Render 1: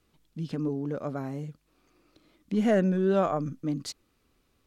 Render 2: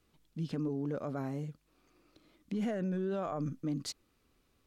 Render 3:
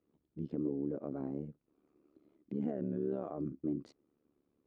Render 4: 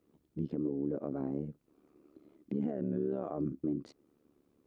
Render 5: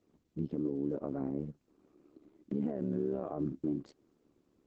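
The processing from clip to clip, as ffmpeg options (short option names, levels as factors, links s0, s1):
-af "alimiter=level_in=1.12:limit=0.0631:level=0:latency=1:release=38,volume=0.891,volume=0.75"
-af "tremolo=f=72:d=0.889,bandpass=f=320:t=q:w=1.2:csg=0,volume=1.68"
-filter_complex "[0:a]asplit=2[s0][s1];[s1]acompressor=threshold=0.00631:ratio=6,volume=0.708[s2];[s0][s2]amix=inputs=2:normalize=0,alimiter=level_in=1.33:limit=0.0631:level=0:latency=1:release=403,volume=0.75,volume=1.33"
-ar 48000 -c:a libopus -b:a 12k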